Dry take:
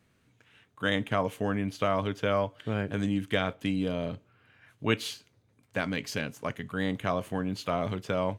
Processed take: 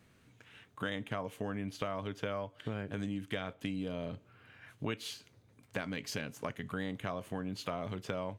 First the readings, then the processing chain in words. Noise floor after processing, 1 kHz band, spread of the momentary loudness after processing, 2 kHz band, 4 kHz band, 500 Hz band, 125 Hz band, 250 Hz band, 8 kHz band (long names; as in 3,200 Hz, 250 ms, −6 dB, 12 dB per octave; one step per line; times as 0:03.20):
−65 dBFS, −9.5 dB, 8 LU, −8.5 dB, −7.5 dB, −9.0 dB, −8.0 dB, −8.0 dB, −4.5 dB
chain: downward compressor 4 to 1, threshold −39 dBFS, peak gain reduction 16 dB
level +3 dB